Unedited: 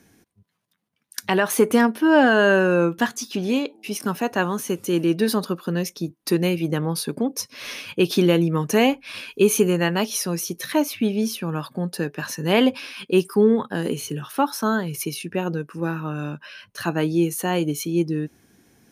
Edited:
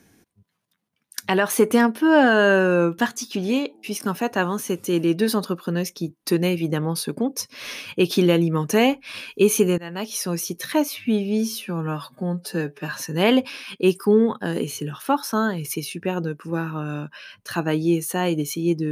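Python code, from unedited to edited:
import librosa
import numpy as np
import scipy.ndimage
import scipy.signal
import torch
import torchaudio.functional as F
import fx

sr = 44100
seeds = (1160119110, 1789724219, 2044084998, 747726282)

y = fx.edit(x, sr, fx.fade_in_from(start_s=9.78, length_s=0.52, floor_db=-22.5),
    fx.stretch_span(start_s=10.89, length_s=1.41, factor=1.5), tone=tone)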